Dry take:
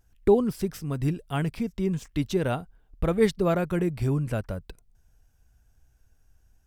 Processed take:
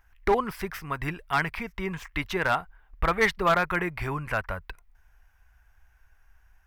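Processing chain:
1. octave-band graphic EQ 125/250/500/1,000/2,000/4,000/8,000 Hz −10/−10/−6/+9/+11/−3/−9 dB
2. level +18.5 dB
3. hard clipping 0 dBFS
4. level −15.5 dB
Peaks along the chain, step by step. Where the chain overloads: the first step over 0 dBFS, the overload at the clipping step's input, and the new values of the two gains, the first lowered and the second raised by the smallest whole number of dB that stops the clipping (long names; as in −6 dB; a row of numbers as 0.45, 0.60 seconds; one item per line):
−9.5, +9.0, 0.0, −15.5 dBFS
step 2, 9.0 dB
step 2 +9.5 dB, step 4 −6.5 dB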